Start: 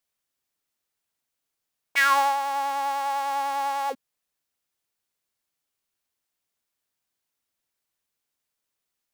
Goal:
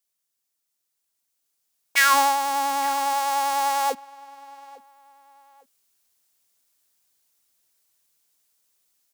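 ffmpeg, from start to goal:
ffmpeg -i in.wav -filter_complex "[0:a]asettb=1/sr,asplit=3[link_01][link_02][link_03];[link_01]atrim=end=2.134[link_04];[link_02]atrim=start=2.13:end=3.13,asetpts=PTS-STARTPTS,afade=type=in:duration=0.004:curve=qsin,afade=type=out:start_time=0.996:duration=0.004:curve=qsin,equalizer=frequency=260:width_type=o:width=0.27:gain=13[link_05];[link_03]atrim=start=3.126[link_06];[link_04][link_05]acrossfade=duration=0.004:curve1=hsin:curve2=qsin[link_07];[link_07][link_06]acrossfade=duration=0.004:curve1=qsin:curve2=hsin,asplit=2[link_08][link_09];[link_09]adelay=855,lowpass=frequency=3200:poles=1,volume=-22.5dB,asplit=2[link_10][link_11];[link_11]adelay=855,lowpass=frequency=3200:poles=1,volume=0.34[link_12];[link_08][link_10][link_12]amix=inputs=3:normalize=0,dynaudnorm=framelen=280:gausssize=11:maxgain=10dB,bass=frequency=250:gain=-2,treble=frequency=4000:gain=9,volume=-4.5dB" out.wav

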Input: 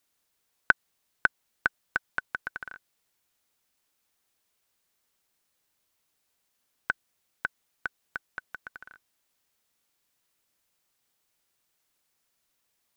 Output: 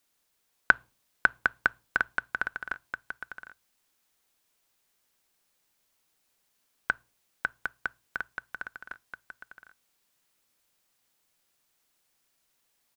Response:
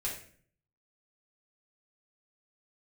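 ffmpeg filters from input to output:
-filter_complex "[0:a]bandreject=frequency=60:width_type=h:width=6,bandreject=frequency=120:width_type=h:width=6,aecho=1:1:756:0.501,asplit=2[link_01][link_02];[1:a]atrim=start_sample=2205,asetrate=70560,aresample=44100[link_03];[link_02][link_03]afir=irnorm=-1:irlink=0,volume=-19dB[link_04];[link_01][link_04]amix=inputs=2:normalize=0,volume=1dB"

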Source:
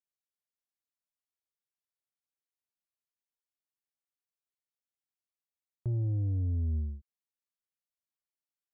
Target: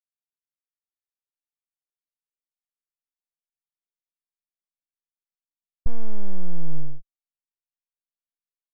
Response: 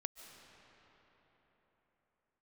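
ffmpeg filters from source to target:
-af "aeval=exprs='abs(val(0))':channel_layout=same,asubboost=boost=8.5:cutoff=86,agate=range=-33dB:threshold=-21dB:ratio=3:detection=peak,volume=1dB"

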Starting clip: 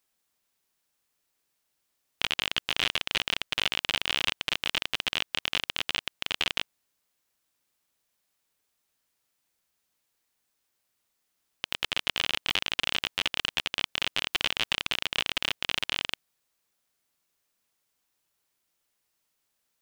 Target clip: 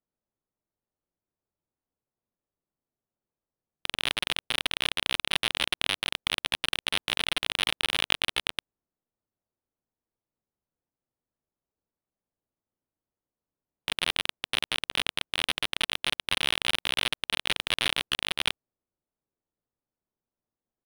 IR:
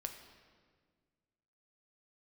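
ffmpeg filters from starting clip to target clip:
-af "areverse,atempo=0.95,adynamicsmooth=sensitivity=3:basefreq=680"

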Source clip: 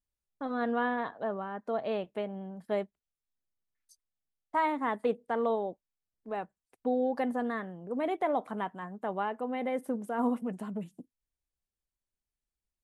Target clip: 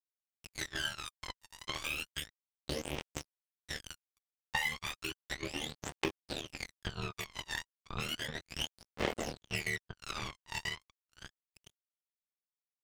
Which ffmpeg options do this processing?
ffmpeg -i in.wav -filter_complex "[0:a]afftfilt=real='re':imag='-im':win_size=2048:overlap=0.75,aeval=exprs='val(0)+0.00112*(sin(2*PI*60*n/s)+sin(2*PI*2*60*n/s)/2+sin(2*PI*3*60*n/s)/3+sin(2*PI*4*60*n/s)/4+sin(2*PI*5*60*n/s)/5)':channel_layout=same,acrossover=split=790[link_01][link_02];[link_01]dynaudnorm=framelen=170:gausssize=7:maxgain=6dB[link_03];[link_02]aexciter=amount=15:drive=7.9:freq=2200[link_04];[link_03][link_04]amix=inputs=2:normalize=0,aemphasis=mode=production:type=75fm,asplit=2[link_05][link_06];[link_06]aecho=0:1:988|1976|2964|3952|4940:0.562|0.247|0.109|0.0479|0.0211[link_07];[link_05][link_07]amix=inputs=2:normalize=0,highpass=frequency=280:width_type=q:width=0.5412,highpass=frequency=280:width_type=q:width=1.307,lowpass=frequency=3300:width_type=q:width=0.5176,lowpass=frequency=3300:width_type=q:width=0.7071,lowpass=frequency=3300:width_type=q:width=1.932,afreqshift=-110,acrusher=bits=3:mix=0:aa=0.5,acompressor=threshold=-38dB:ratio=16,aeval=exprs='val(0)*sin(2*PI*38*n/s)':channel_layout=same,aphaser=in_gain=1:out_gain=1:delay=1.1:decay=0.76:speed=0.33:type=triangular,volume=4.5dB" out.wav

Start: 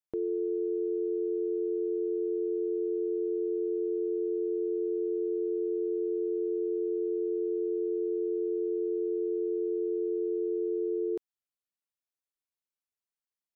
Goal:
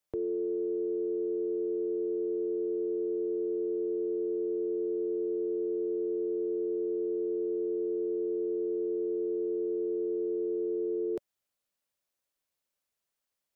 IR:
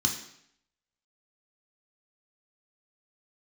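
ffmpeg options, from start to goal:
-filter_complex "[0:a]equalizer=frequency=570:width_type=o:width=0.34:gain=6.5,acrossover=split=150[link_01][link_02];[link_02]alimiter=level_in=10.5dB:limit=-24dB:level=0:latency=1:release=11,volume=-10.5dB[link_03];[link_01][link_03]amix=inputs=2:normalize=0,volume=7.5dB"

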